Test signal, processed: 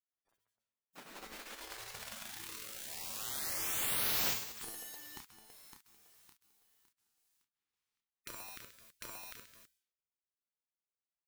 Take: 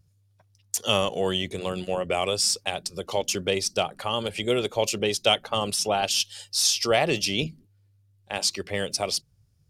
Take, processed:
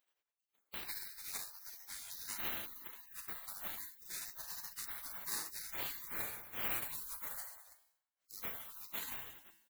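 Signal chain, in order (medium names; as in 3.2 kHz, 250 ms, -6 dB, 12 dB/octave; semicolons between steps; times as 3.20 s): pre-emphasis filter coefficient 0.9; hum notches 50/100 Hz; on a send: reverse bouncing-ball echo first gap 30 ms, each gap 1.4×, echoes 5; on the sum: dynamic bell 1.2 kHz, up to -4 dB, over -47 dBFS, Q 1.4; in parallel at 0 dB: compression 8:1, threshold -39 dBFS; on the sum: short-mantissa float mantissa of 2-bit; feedback comb 110 Hz, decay 0.76 s, harmonics all, mix 80%; spectral gate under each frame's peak -30 dB weak; trim +18 dB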